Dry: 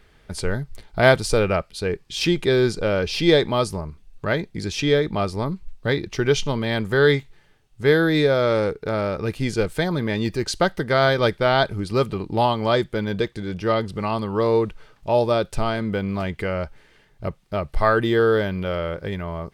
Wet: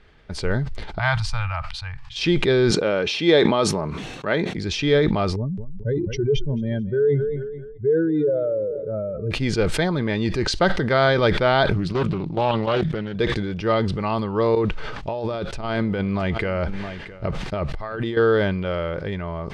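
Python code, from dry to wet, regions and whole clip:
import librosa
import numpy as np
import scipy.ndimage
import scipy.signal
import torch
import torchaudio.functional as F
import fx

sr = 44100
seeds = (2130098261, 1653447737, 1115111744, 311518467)

y = fx.chain(x, sr, fx.cheby1_bandstop(low_hz=120.0, high_hz=860.0, order=3),
    fx.high_shelf(hz=2600.0, db=-9.5), at=(0.99, 2.16))
y = fx.chain(y, sr, fx.highpass(hz=190.0, slope=12),
    fx.notch(hz=4800.0, q=7.3), at=(2.71, 4.57))
y = fx.chain(y, sr, fx.spec_expand(power=2.6),
    fx.peak_eq(hz=1000.0, db=-5.0, octaves=2.4),
    fx.echo_warbled(ms=217, feedback_pct=33, rate_hz=2.8, cents=51, wet_db=-19.0), at=(5.36, 9.31))
y = fx.chain(y, sr, fx.peak_eq(hz=160.0, db=14.5, octaves=0.26),
    fx.level_steps(step_db=10),
    fx.doppler_dist(depth_ms=0.51), at=(11.74, 13.15))
y = fx.chain(y, sr, fx.over_compress(threshold_db=-26.0, ratio=-1.0),
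    fx.echo_single(ms=665, db=-21.0), at=(14.55, 18.17))
y = scipy.signal.sosfilt(scipy.signal.butter(2, 4600.0, 'lowpass', fs=sr, output='sos'), y)
y = fx.sustainer(y, sr, db_per_s=34.0)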